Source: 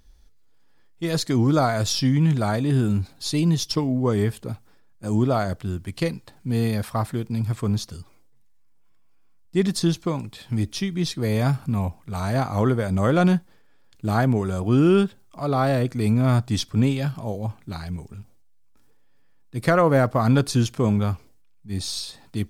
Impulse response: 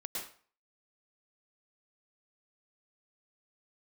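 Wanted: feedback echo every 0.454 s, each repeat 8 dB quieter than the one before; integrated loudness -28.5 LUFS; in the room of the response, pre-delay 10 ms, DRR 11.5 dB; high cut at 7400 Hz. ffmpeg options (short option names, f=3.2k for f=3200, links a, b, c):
-filter_complex "[0:a]lowpass=7.4k,aecho=1:1:454|908|1362|1816|2270:0.398|0.159|0.0637|0.0255|0.0102,asplit=2[a][b];[1:a]atrim=start_sample=2205,adelay=10[c];[b][c]afir=irnorm=-1:irlink=0,volume=-12.5dB[d];[a][d]amix=inputs=2:normalize=0,volume=-6dB"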